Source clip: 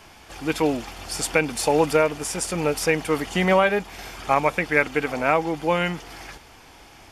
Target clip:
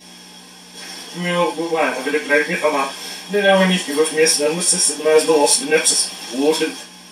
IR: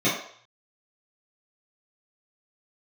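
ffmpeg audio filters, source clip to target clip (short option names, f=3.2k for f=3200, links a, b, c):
-filter_complex "[0:a]areverse,crystalizer=i=9:c=0,aeval=exprs='val(0)+0.00708*(sin(2*PI*60*n/s)+sin(2*PI*2*60*n/s)/2+sin(2*PI*3*60*n/s)/3+sin(2*PI*4*60*n/s)/4+sin(2*PI*5*60*n/s)/5)':c=same[a];[1:a]atrim=start_sample=2205,afade=t=out:st=0.21:d=0.01,atrim=end_sample=9702,asetrate=66150,aresample=44100[b];[a][b]afir=irnorm=-1:irlink=0,volume=-15dB"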